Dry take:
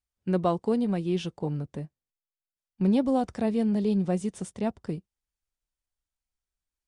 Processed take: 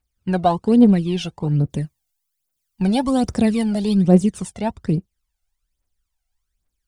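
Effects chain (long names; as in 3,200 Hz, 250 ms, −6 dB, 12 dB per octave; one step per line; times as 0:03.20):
0:01.70–0:04.04: high-shelf EQ 4,500 Hz +10.5 dB
phase shifter 1.2 Hz, delay 1.5 ms, feedback 69%
level +6.5 dB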